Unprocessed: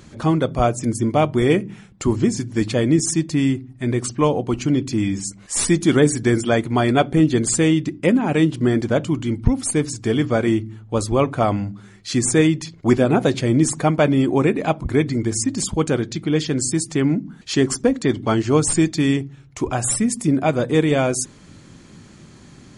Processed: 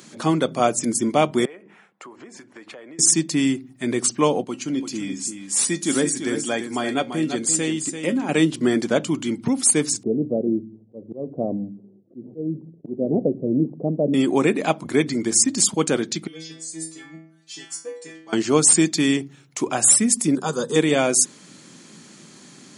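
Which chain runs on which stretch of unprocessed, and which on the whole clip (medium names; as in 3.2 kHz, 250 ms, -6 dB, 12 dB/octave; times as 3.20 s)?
1.45–2.99 s: three-band isolator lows -20 dB, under 460 Hz, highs -21 dB, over 2.2 kHz + compression 8:1, threshold -37 dBFS
4.44–8.29 s: feedback comb 270 Hz, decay 0.19 s + delay 340 ms -8.5 dB
10.03–14.14 s: steep low-pass 580 Hz + dynamic bell 330 Hz, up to -3 dB, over -28 dBFS, Q 2.9 + slow attack 259 ms
16.27–18.33 s: bass shelf 300 Hz -9.5 dB + band-stop 1.4 kHz, Q 21 + inharmonic resonator 160 Hz, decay 0.65 s, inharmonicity 0.002
20.35–20.76 s: peaking EQ 6.2 kHz +7.5 dB 1.1 oct + static phaser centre 440 Hz, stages 8
whole clip: high-pass 170 Hz 24 dB/octave; treble shelf 3.6 kHz +10 dB; trim -1 dB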